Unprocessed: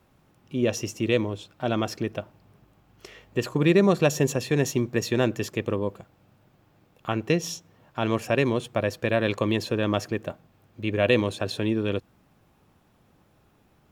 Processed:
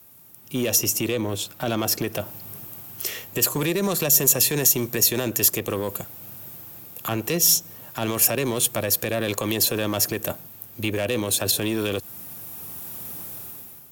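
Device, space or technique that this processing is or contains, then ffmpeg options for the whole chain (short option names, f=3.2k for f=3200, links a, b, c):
FM broadcast chain: -filter_complex "[0:a]highpass=f=71:w=0.5412,highpass=f=71:w=1.3066,dynaudnorm=f=180:g=7:m=15dB,acrossover=split=470|950[a][b][c];[a]acompressor=threshold=-23dB:ratio=4[d];[b]acompressor=threshold=-25dB:ratio=4[e];[c]acompressor=threshold=-30dB:ratio=4[f];[d][e][f]amix=inputs=3:normalize=0,aemphasis=mode=production:type=50fm,alimiter=limit=-16dB:level=0:latency=1:release=17,asoftclip=type=hard:threshold=-18.5dB,lowpass=f=15k:w=0.5412,lowpass=f=15k:w=1.3066,aemphasis=mode=production:type=50fm,asettb=1/sr,asplit=3[g][h][i];[g]atrim=end=0.784[j];[h]atrim=start=0.78:end=2.19,asetpts=PTS-STARTPTS,afade=t=in:d=0.004:c=qsin,afade=t=out:st=1.406:d=0.004:c=qsin,highshelf=f=4.4k:g=-5[k];[i]atrim=start=2.186[l];[j][k]acrossfade=d=0.004:c1=hsin:c2=qsin[m];[m][l]acrossfade=d=0.004:c1=qsin:c2=hsin,volume=1dB"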